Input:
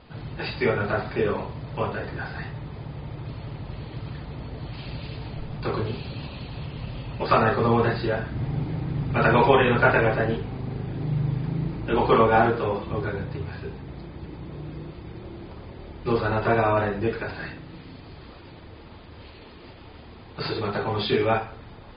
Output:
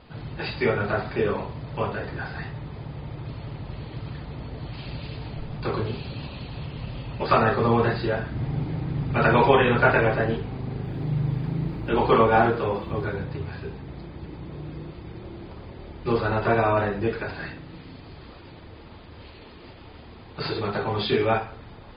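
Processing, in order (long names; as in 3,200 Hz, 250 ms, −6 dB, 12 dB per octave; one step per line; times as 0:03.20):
0:10.84–0:13.16: bit-depth reduction 12 bits, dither none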